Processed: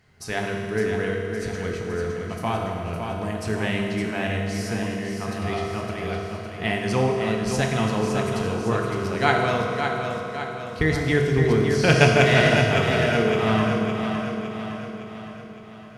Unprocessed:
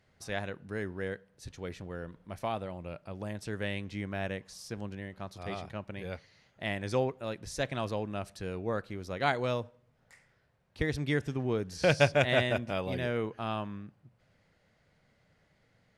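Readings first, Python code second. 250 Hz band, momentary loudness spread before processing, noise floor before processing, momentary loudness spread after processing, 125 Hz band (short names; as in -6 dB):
+12.5 dB, 15 LU, -70 dBFS, 12 LU, +12.5 dB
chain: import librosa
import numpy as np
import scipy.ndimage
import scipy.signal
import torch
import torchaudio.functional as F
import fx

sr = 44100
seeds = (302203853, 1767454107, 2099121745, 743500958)

p1 = fx.peak_eq(x, sr, hz=570.0, db=-9.0, octaves=0.29)
p2 = fx.notch(p1, sr, hz=3600.0, q=12.0)
p3 = p2 + fx.echo_feedback(p2, sr, ms=561, feedback_pct=53, wet_db=-6.5, dry=0)
p4 = fx.rev_fdn(p3, sr, rt60_s=2.5, lf_ratio=1.0, hf_ratio=0.8, size_ms=14.0, drr_db=0.0)
y = p4 * librosa.db_to_amplitude(8.0)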